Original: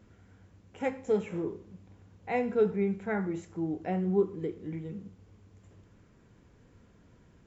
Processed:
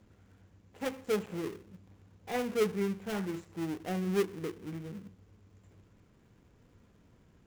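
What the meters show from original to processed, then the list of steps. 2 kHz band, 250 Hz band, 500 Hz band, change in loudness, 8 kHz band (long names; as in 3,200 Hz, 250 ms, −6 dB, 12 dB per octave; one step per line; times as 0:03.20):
−1.5 dB, −3.0 dB, −3.5 dB, −3.5 dB, can't be measured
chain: gap after every zero crossing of 0.29 ms
level −3 dB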